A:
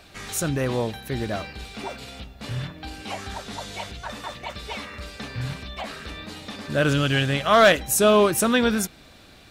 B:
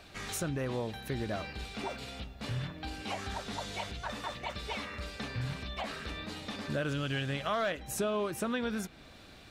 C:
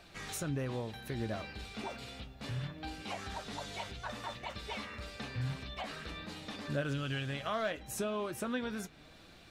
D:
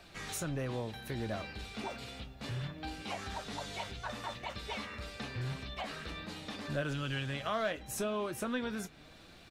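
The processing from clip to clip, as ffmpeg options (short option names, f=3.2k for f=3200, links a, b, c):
-filter_complex "[0:a]highshelf=f=8.3k:g=-5.5,acrossover=split=3600[a][b];[b]alimiter=limit=-24dB:level=0:latency=1:release=377[c];[a][c]amix=inputs=2:normalize=0,acompressor=threshold=-28dB:ratio=4,volume=-3.5dB"
-af "flanger=delay=5.7:depth=4:regen=66:speed=0.32:shape=triangular,volume=1dB"
-filter_complex "[0:a]acrossover=split=390|4000[a][b][c];[a]asoftclip=type=hard:threshold=-36dB[d];[c]asplit=2[e][f];[f]adelay=23,volume=-11.5dB[g];[e][g]amix=inputs=2:normalize=0[h];[d][b][h]amix=inputs=3:normalize=0,volume=1dB"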